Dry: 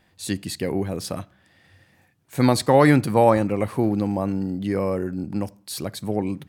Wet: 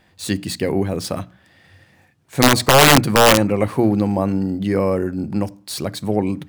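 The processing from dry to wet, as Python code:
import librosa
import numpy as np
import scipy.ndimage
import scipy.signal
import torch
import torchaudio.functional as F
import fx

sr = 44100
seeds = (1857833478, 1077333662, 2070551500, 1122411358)

y = scipy.signal.medfilt(x, 3)
y = (np.mod(10.0 ** (9.0 / 20.0) * y + 1.0, 2.0) - 1.0) / 10.0 ** (9.0 / 20.0)
y = fx.hum_notches(y, sr, base_hz=60, count=5)
y = F.gain(torch.from_numpy(y), 5.5).numpy()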